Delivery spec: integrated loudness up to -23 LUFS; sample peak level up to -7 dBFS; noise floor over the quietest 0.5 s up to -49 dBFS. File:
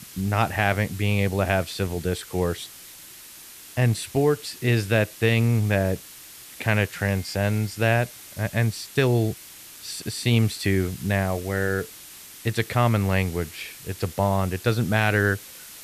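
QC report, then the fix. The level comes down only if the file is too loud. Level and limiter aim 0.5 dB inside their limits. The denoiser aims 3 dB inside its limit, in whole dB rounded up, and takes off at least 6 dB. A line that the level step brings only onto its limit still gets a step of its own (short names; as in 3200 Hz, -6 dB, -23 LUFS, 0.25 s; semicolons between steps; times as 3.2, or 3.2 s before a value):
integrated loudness -24.5 LUFS: OK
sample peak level -6.0 dBFS: fail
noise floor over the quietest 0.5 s -44 dBFS: fail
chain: denoiser 8 dB, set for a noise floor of -44 dBFS; limiter -7.5 dBFS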